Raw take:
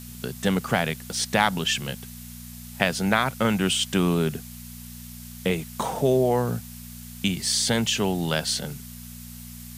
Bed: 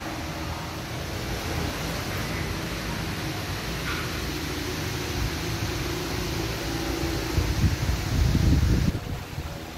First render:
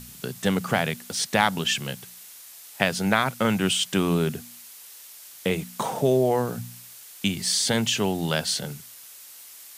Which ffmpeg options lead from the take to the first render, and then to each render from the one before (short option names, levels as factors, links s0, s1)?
-af "bandreject=f=60:t=h:w=4,bandreject=f=120:t=h:w=4,bandreject=f=180:t=h:w=4,bandreject=f=240:t=h:w=4"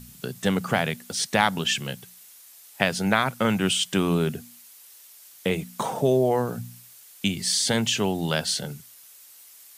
-af "afftdn=nr=6:nf=-46"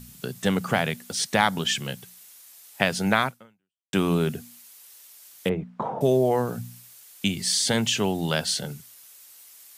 -filter_complex "[0:a]asettb=1/sr,asplit=3[s0][s1][s2];[s0]atrim=end=1.364[s3];[s1]atrim=start=1.36:end=1.81,asetpts=PTS-STARTPTS,afade=t=in:d=0.004:c=qsin,afade=t=out:st=0.446:d=0.004:c=qsin,bandreject=f=2700:w=12[s4];[s2]atrim=start=1.806[s5];[s3][s4]acrossfade=d=0.004:c1=hsin:c2=qsin[s6];[s6][s5]acrossfade=d=0.004:c1=qsin:c2=hsin,asettb=1/sr,asplit=3[s7][s8][s9];[s7]atrim=end=5.494[s10];[s8]atrim=start=5.49:end=6.01,asetpts=PTS-STARTPTS,afade=t=in:d=0.004:c=qsin,afade=t=out:st=0.516:d=0.004:c=qsin,lowpass=1200[s11];[s9]atrim=start=6.006[s12];[s10][s11]acrossfade=d=0.004:c1=hsin:c2=qsin[s13];[s13][s12]acrossfade=d=0.004:c1=qsin:c2=hsin,asplit=2[s14][s15];[s14]atrim=end=3.93,asetpts=PTS-STARTPTS,afade=t=out:st=3.25:d=0.68:c=exp[s16];[s15]atrim=start=3.93,asetpts=PTS-STARTPTS,afade=t=in:d=0.004:c=hsin[s17];[s16][s17]concat=n=2:v=0:a=1"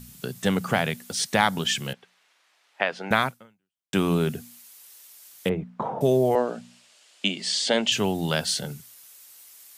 -filter_complex "[0:a]asettb=1/sr,asplit=3[s0][s1][s2];[s0]atrim=end=1.934[s3];[s1]atrim=start=1.93:end=3.11,asetpts=PTS-STARTPTS,afade=t=in:d=0.004:c=qsin,afade=t=out:st=1.176:d=0.004:c=qsin,highpass=440,lowpass=2500[s4];[s2]atrim=start=3.106[s5];[s3][s4]acrossfade=d=0.004:c1=hsin:c2=qsin[s6];[s6][s5]acrossfade=d=0.004:c1=qsin:c2=hsin,asettb=1/sr,asplit=3[s7][s8][s9];[s7]atrim=end=6.354[s10];[s8]atrim=start=6.35:end=7.92,asetpts=PTS-STARTPTS,afade=t=in:d=0.004:c=qsin,afade=t=out:st=1.566:d=0.004:c=qsin,highpass=f=220:w=0.5412,highpass=f=220:w=1.3066,equalizer=f=610:t=q:w=4:g=9,equalizer=f=2900:t=q:w=4:g=5,equalizer=f=6000:t=q:w=4:g=-5,lowpass=f=7100:w=0.5412,lowpass=f=7100:w=1.3066[s11];[s9]atrim=start=7.916[s12];[s10][s11]acrossfade=d=0.004:c1=hsin:c2=qsin[s13];[s13][s12]acrossfade=d=0.004:c1=qsin:c2=hsin"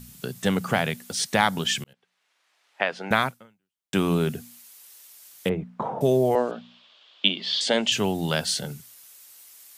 -filter_complex "[0:a]asettb=1/sr,asplit=3[s0][s1][s2];[s0]atrim=end=6.514[s3];[s1]atrim=start=6.51:end=7.61,asetpts=PTS-STARTPTS,afade=t=in:d=0.004:c=qsin,afade=t=out:st=1.096:d=0.004:c=qsin,highpass=160,equalizer=f=1100:t=q:w=4:g=6,equalizer=f=2000:t=q:w=4:g=-3,equalizer=f=3400:t=q:w=4:g=10,lowpass=f=4200:w=0.5412,lowpass=f=4200:w=1.3066[s4];[s2]atrim=start=7.606[s5];[s3][s4]acrossfade=d=0.004:c1=hsin:c2=qsin[s6];[s6][s5]acrossfade=d=0.004:c1=qsin:c2=hsin,asplit=2[s7][s8];[s7]atrim=end=1.84,asetpts=PTS-STARTPTS,afade=t=out:st=1.836:d=0.004:c=hsin[s9];[s8]atrim=start=1.84,asetpts=PTS-STARTPTS,afade=t=in:d=0.99[s10];[s9][s10]concat=n=2:v=0:a=1"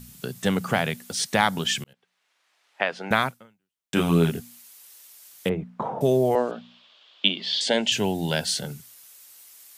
-filter_complex "[0:a]asettb=1/sr,asplit=3[s0][s1][s2];[s0]atrim=end=3.944[s3];[s1]atrim=start=3.94:end=4.4,asetpts=PTS-STARTPTS,afade=t=in:d=0.004:c=qsin,afade=t=out:st=0.456:d=0.004:c=qsin,asplit=2[s4][s5];[s5]adelay=24,volume=0.794[s6];[s4][s6]amix=inputs=2:normalize=0,atrim=end_sample=20286[s7];[s2]atrim=start=4.396[s8];[s3][s7]acrossfade=d=0.004:c1=hsin:c2=qsin[s9];[s9][s8]acrossfade=d=0.004:c1=qsin:c2=hsin,asettb=1/sr,asplit=3[s10][s11][s12];[s10]atrim=end=7.454[s13];[s11]atrim=start=7.45:end=8.55,asetpts=PTS-STARTPTS,afade=t=in:d=0.004:c=qsin,afade=t=out:st=1.096:d=0.004:c=qsin,asuperstop=centerf=1200:order=4:qfactor=3.7[s14];[s12]atrim=start=8.546[s15];[s13][s14]acrossfade=d=0.004:c1=hsin:c2=qsin[s16];[s16][s15]acrossfade=d=0.004:c1=qsin:c2=hsin"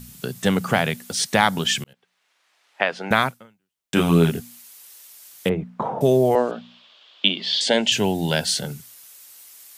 -af "volume=1.5,alimiter=limit=0.891:level=0:latency=1"